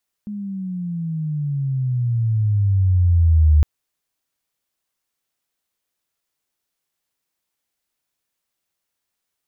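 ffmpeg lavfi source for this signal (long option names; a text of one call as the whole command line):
ffmpeg -f lavfi -i "aevalsrc='pow(10,(-26+17*t/3.36)/20)*sin(2*PI*210*3.36/log(74/210)*(exp(log(74/210)*t/3.36)-1))':duration=3.36:sample_rate=44100" out.wav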